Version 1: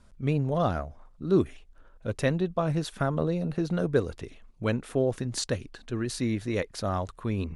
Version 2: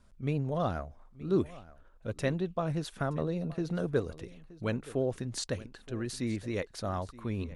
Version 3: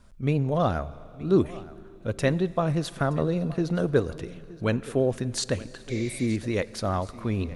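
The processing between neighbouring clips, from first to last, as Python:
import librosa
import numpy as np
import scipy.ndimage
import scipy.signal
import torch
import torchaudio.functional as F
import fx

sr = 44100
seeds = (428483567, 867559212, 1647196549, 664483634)

y1 = fx.vibrato(x, sr, rate_hz=12.0, depth_cents=31.0)
y1 = y1 + 10.0 ** (-19.0 / 20.0) * np.pad(y1, (int(923 * sr / 1000.0), 0))[:len(y1)]
y1 = F.gain(torch.from_numpy(y1), -5.0).numpy()
y2 = fx.rev_schroeder(y1, sr, rt60_s=3.4, comb_ms=28, drr_db=18.5)
y2 = fx.spec_repair(y2, sr, seeds[0], start_s=5.93, length_s=0.31, low_hz=520.0, high_hz=7600.0, source='after')
y2 = F.gain(torch.from_numpy(y2), 7.0).numpy()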